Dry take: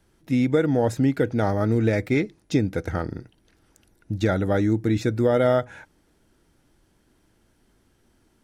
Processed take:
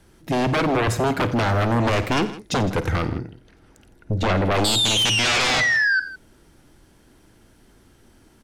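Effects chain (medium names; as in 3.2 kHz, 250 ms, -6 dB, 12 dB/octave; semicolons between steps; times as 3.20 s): 3.09–4.51 s: treble shelf 4.3 kHz -10.5 dB; 4.64–6.00 s: painted sound fall 1.5–4.1 kHz -25 dBFS; sine folder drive 14 dB, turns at -8 dBFS; multi-tap echo 52/89/161 ms -15.5/-17/-17 dB; trim -9 dB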